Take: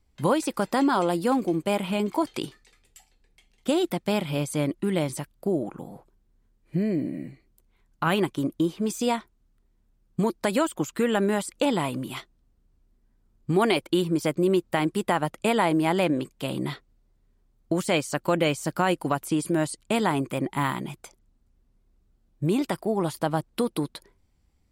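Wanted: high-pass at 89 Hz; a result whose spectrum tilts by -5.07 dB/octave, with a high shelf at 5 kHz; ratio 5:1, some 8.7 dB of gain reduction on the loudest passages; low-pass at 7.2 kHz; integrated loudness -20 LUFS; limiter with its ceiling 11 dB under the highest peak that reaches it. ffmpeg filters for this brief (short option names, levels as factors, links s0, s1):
-af "highpass=89,lowpass=7200,highshelf=f=5000:g=4,acompressor=threshold=0.0398:ratio=5,volume=7.08,alimiter=limit=0.355:level=0:latency=1"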